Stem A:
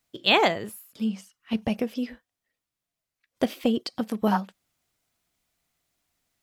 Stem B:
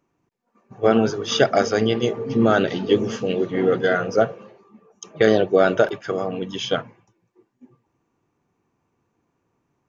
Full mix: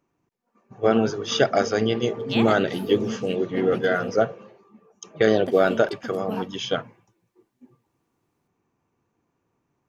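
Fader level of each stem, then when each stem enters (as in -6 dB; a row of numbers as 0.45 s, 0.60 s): -9.0 dB, -2.5 dB; 2.05 s, 0.00 s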